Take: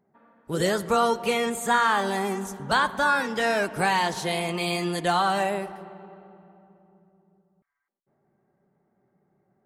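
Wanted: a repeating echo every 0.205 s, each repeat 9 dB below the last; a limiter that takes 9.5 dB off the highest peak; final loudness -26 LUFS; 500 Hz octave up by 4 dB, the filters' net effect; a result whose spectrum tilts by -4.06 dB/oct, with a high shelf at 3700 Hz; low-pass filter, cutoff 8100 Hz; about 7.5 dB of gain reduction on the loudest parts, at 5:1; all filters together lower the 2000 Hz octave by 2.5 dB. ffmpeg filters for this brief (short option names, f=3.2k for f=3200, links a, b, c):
-af "lowpass=8.1k,equalizer=f=500:t=o:g=5,equalizer=f=2k:t=o:g=-5,highshelf=f=3.7k:g=4.5,acompressor=threshold=-24dB:ratio=5,alimiter=limit=-23dB:level=0:latency=1,aecho=1:1:205|410|615|820:0.355|0.124|0.0435|0.0152,volume=5.5dB"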